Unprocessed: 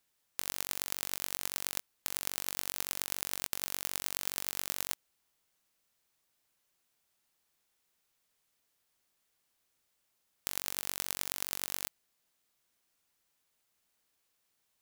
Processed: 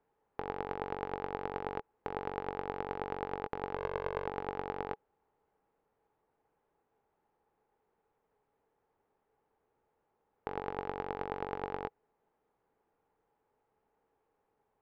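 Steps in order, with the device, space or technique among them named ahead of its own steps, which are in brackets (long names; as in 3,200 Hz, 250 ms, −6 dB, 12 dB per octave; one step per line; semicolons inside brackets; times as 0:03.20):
low-pass filter 1,100 Hz 12 dB per octave
0:03.75–0:04.27: comb filter 1.9 ms, depth 81%
inside a cardboard box (low-pass filter 3,000 Hz 12 dB per octave; hollow resonant body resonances 440/830 Hz, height 12 dB, ringing for 40 ms)
level +7.5 dB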